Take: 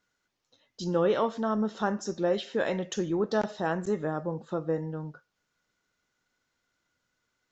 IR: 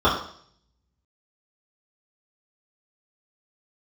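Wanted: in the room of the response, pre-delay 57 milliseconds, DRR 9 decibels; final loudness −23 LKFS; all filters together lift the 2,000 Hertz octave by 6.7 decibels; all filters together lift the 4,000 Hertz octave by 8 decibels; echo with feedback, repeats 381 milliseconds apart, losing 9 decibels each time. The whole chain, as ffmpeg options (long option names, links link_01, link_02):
-filter_complex "[0:a]equalizer=frequency=2000:width_type=o:gain=7.5,equalizer=frequency=4000:width_type=o:gain=7.5,aecho=1:1:381|762|1143|1524:0.355|0.124|0.0435|0.0152,asplit=2[link_01][link_02];[1:a]atrim=start_sample=2205,adelay=57[link_03];[link_02][link_03]afir=irnorm=-1:irlink=0,volume=-30dB[link_04];[link_01][link_04]amix=inputs=2:normalize=0,volume=4.5dB"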